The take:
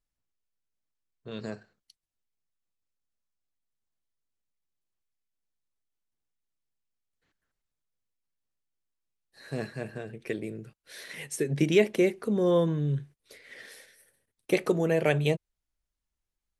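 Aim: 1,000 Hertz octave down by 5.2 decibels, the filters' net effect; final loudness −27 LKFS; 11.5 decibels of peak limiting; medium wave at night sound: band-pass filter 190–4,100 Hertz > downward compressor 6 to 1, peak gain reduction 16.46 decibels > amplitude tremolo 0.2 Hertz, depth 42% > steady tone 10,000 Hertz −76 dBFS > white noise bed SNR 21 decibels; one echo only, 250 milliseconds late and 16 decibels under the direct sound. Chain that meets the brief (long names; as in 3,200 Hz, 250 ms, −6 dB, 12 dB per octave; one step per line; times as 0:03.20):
parametric band 1,000 Hz −7.5 dB
brickwall limiter −21 dBFS
band-pass filter 190–4,100 Hz
single-tap delay 250 ms −16 dB
downward compressor 6 to 1, threshold −43 dBFS
amplitude tremolo 0.2 Hz, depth 42%
steady tone 10,000 Hz −76 dBFS
white noise bed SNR 21 dB
level +22.5 dB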